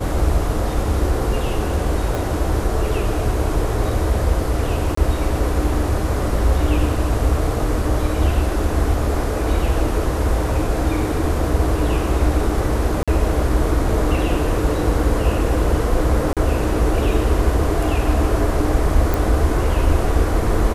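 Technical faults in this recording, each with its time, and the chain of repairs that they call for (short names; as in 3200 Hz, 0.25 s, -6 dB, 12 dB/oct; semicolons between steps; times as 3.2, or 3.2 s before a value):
2.15 pop
4.95–4.97 gap 24 ms
13.03–13.08 gap 46 ms
16.33–16.37 gap 37 ms
19.14 pop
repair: de-click; interpolate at 4.95, 24 ms; interpolate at 13.03, 46 ms; interpolate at 16.33, 37 ms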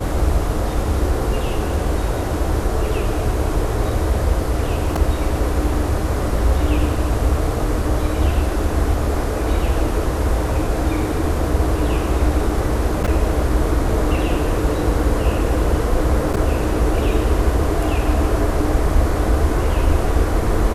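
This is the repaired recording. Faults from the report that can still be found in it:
2.15 pop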